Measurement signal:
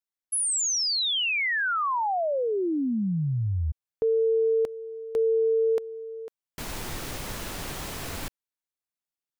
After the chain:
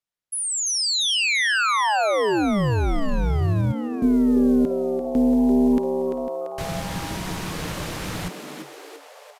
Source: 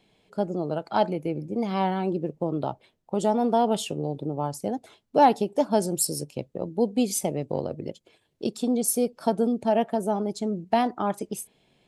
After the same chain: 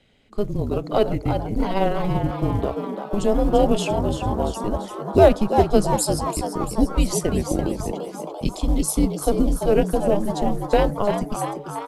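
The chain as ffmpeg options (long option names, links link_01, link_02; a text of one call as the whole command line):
ffmpeg -i in.wav -filter_complex "[0:a]highshelf=frequency=8100:gain=-8.5,tremolo=f=210:d=0.462,afreqshift=-200,acrusher=bits=9:mode=log:mix=0:aa=0.000001,asplit=8[link_01][link_02][link_03][link_04][link_05][link_06][link_07][link_08];[link_02]adelay=341,afreqshift=140,volume=-8dB[link_09];[link_03]adelay=682,afreqshift=280,volume=-12.6dB[link_10];[link_04]adelay=1023,afreqshift=420,volume=-17.2dB[link_11];[link_05]adelay=1364,afreqshift=560,volume=-21.7dB[link_12];[link_06]adelay=1705,afreqshift=700,volume=-26.3dB[link_13];[link_07]adelay=2046,afreqshift=840,volume=-30.9dB[link_14];[link_08]adelay=2387,afreqshift=980,volume=-35.5dB[link_15];[link_01][link_09][link_10][link_11][link_12][link_13][link_14][link_15]amix=inputs=8:normalize=0,aresample=32000,aresample=44100,volume=7dB" out.wav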